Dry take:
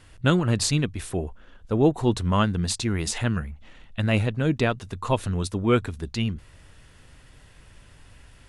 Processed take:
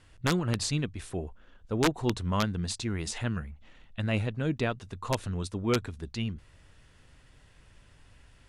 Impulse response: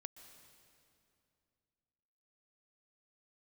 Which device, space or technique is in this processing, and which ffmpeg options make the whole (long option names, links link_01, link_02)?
overflowing digital effects unit: -af "aeval=exprs='(mod(3.16*val(0)+1,2)-1)/3.16':channel_layout=same,lowpass=9600,volume=-6.5dB"